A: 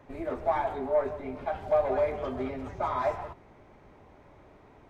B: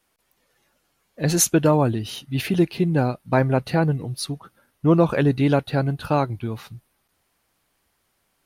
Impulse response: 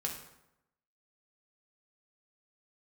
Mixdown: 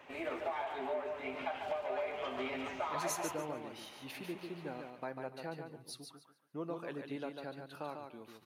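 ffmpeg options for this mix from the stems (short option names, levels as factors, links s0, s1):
-filter_complex "[0:a]highpass=f=890:p=1,equalizer=f=2800:w=2.4:g=10.5,acompressor=threshold=0.0126:ratio=12,volume=1.19,asplit=3[s0][s1][s2];[s1]volume=0.251[s3];[s2]volume=0.531[s4];[1:a]highpass=310,acompressor=threshold=0.0447:ratio=1.5,adelay=1700,volume=0.112,asplit=3[s5][s6][s7];[s6]volume=0.224[s8];[s7]volume=0.631[s9];[2:a]atrim=start_sample=2205[s10];[s3][s8]amix=inputs=2:normalize=0[s11];[s11][s10]afir=irnorm=-1:irlink=0[s12];[s4][s9]amix=inputs=2:normalize=0,aecho=0:1:145|290|435|580:1|0.23|0.0529|0.0122[s13];[s0][s5][s12][s13]amix=inputs=4:normalize=0"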